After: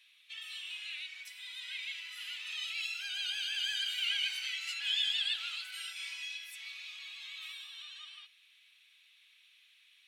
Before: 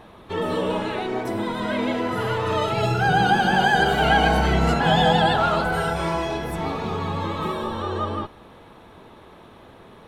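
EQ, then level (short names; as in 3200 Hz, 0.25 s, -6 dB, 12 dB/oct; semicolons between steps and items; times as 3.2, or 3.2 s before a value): Chebyshev high-pass 2400 Hz, order 4; high shelf 4200 Hz -8 dB; 0.0 dB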